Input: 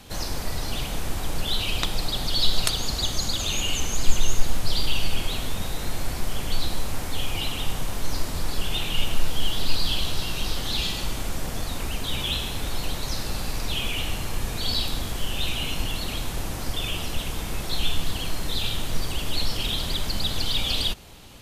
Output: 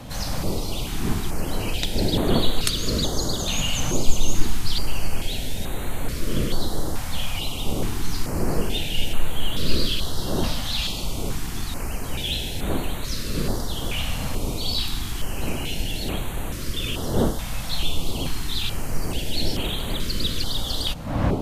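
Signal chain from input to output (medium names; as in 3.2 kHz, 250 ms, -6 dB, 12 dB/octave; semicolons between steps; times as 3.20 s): wind noise 390 Hz -31 dBFS; step-sequenced notch 2.3 Hz 380–5200 Hz; trim +1 dB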